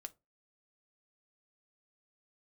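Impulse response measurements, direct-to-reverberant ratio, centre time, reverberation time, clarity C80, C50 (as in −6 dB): 7.0 dB, 2 ms, 0.25 s, 33.0 dB, 23.5 dB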